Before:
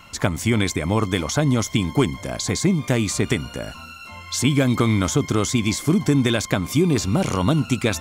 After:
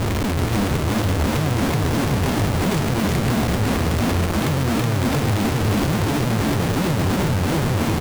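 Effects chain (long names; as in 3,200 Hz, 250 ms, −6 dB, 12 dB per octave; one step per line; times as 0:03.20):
spectrum smeared in time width 1,240 ms
low-shelf EQ 230 Hz +5.5 dB
in parallel at −1.5 dB: brickwall limiter −19.5 dBFS, peak gain reduction 10.5 dB
on the sum: centre clipping without the shift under −33 dBFS
all-pass phaser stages 12, 2.9 Hz, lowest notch 110–1,300 Hz
comparator with hysteresis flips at −32 dBFS
on a send: single-tap delay 373 ms −4 dB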